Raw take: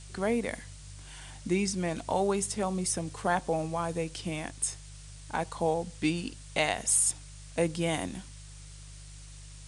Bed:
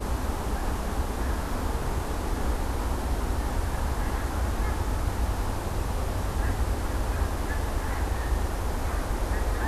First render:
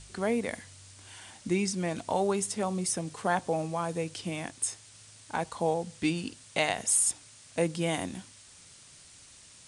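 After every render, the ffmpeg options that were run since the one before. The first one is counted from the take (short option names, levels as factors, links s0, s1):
-af "bandreject=f=50:t=h:w=4,bandreject=f=100:t=h:w=4,bandreject=f=150:t=h:w=4"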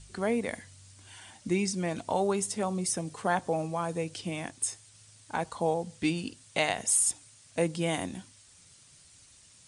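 -af "afftdn=nr=6:nf=-54"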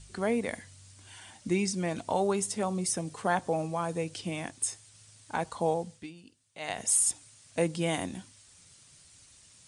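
-filter_complex "[0:a]asplit=3[s0][s1][s2];[s0]atrim=end=6.07,asetpts=PTS-STARTPTS,afade=t=out:st=5.72:d=0.35:c=qsin:silence=0.133352[s3];[s1]atrim=start=6.07:end=6.59,asetpts=PTS-STARTPTS,volume=0.133[s4];[s2]atrim=start=6.59,asetpts=PTS-STARTPTS,afade=t=in:d=0.35:c=qsin:silence=0.133352[s5];[s3][s4][s5]concat=n=3:v=0:a=1"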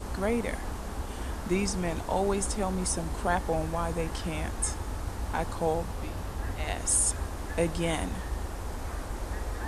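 -filter_complex "[1:a]volume=0.447[s0];[0:a][s0]amix=inputs=2:normalize=0"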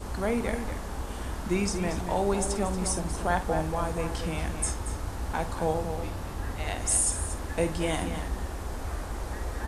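-filter_complex "[0:a]asplit=2[s0][s1];[s1]adelay=50,volume=0.282[s2];[s0][s2]amix=inputs=2:normalize=0,asplit=2[s3][s4];[s4]adelay=233.2,volume=0.398,highshelf=f=4000:g=-5.25[s5];[s3][s5]amix=inputs=2:normalize=0"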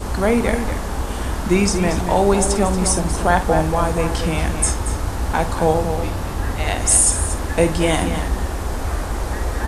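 -af "volume=3.55,alimiter=limit=0.794:level=0:latency=1"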